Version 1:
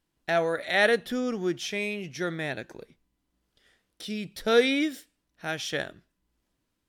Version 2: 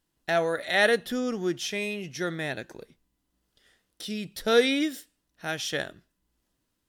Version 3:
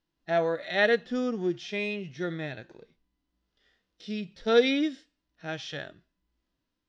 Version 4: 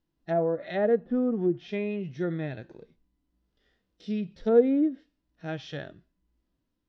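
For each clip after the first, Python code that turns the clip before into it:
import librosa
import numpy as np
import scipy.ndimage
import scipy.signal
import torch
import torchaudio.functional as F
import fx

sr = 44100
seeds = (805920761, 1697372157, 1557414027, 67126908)

y1 = fx.high_shelf(x, sr, hz=5400.0, db=5.0)
y1 = fx.notch(y1, sr, hz=2300.0, q=17.0)
y2 = scipy.signal.sosfilt(scipy.signal.butter(4, 5500.0, 'lowpass', fs=sr, output='sos'), y1)
y2 = fx.hpss(y2, sr, part='percussive', gain_db=-14)
y3 = fx.env_lowpass_down(y2, sr, base_hz=880.0, full_db=-24.0)
y3 = fx.tilt_shelf(y3, sr, db=5.0, hz=700.0)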